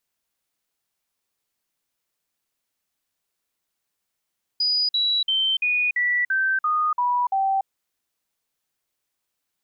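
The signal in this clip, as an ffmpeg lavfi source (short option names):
-f lavfi -i "aevalsrc='0.119*clip(min(mod(t,0.34),0.29-mod(t,0.34))/0.005,0,1)*sin(2*PI*4930*pow(2,-floor(t/0.34)/3)*mod(t,0.34))':d=3.06:s=44100"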